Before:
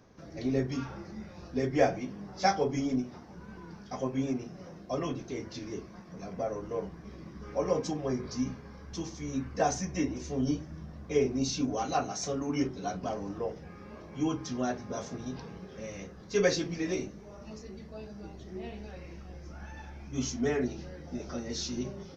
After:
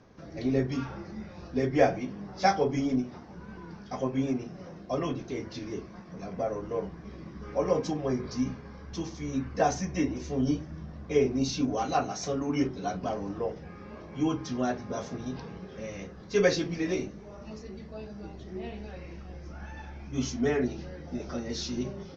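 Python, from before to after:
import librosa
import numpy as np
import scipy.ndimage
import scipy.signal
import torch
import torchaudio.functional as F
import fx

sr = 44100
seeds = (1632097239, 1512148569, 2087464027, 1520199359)

y = scipy.signal.sosfilt(scipy.signal.butter(2, 5400.0, 'lowpass', fs=sr, output='sos'), x)
y = y * librosa.db_to_amplitude(2.5)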